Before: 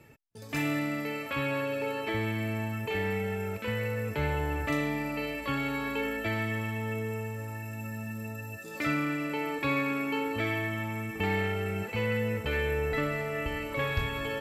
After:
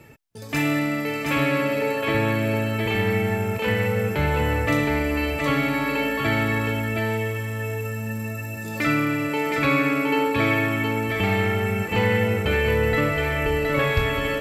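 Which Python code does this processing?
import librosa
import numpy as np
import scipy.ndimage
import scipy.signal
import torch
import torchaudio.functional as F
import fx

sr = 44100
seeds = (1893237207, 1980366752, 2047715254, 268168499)

y = x + 10.0 ** (-3.5 / 20.0) * np.pad(x, (int(717 * sr / 1000.0), 0))[:len(x)]
y = y * 10.0 ** (7.5 / 20.0)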